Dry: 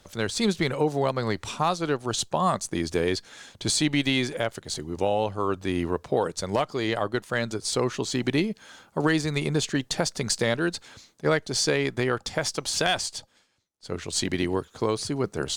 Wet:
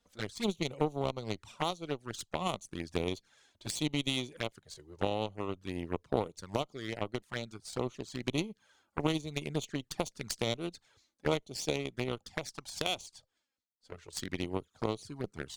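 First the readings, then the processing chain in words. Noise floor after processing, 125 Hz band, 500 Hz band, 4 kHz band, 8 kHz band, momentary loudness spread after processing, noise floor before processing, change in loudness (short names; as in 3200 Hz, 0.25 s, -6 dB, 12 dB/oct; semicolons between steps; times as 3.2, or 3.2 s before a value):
-80 dBFS, -9.0 dB, -10.0 dB, -9.5 dB, -13.5 dB, 9 LU, -61 dBFS, -10.0 dB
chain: added harmonics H 3 -11 dB, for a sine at -10.5 dBFS; envelope flanger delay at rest 4.3 ms, full sweep at -31 dBFS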